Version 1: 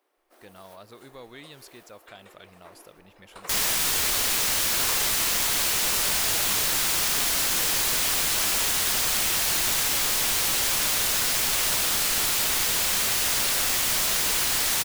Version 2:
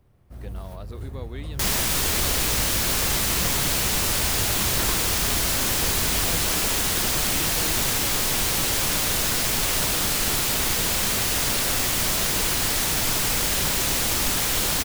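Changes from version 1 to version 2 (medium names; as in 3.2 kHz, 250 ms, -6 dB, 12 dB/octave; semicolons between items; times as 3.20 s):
first sound: remove Chebyshev high-pass 310 Hz, order 4; second sound: entry -1.90 s; master: add bass shelf 470 Hz +11 dB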